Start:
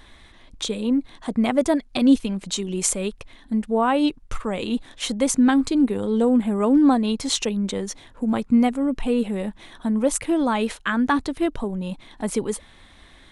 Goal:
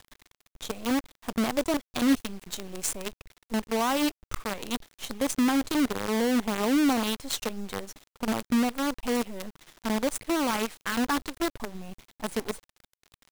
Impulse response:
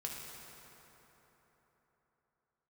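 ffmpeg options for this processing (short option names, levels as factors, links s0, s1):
-af "acrusher=bits=4:dc=4:mix=0:aa=0.000001,volume=0.422"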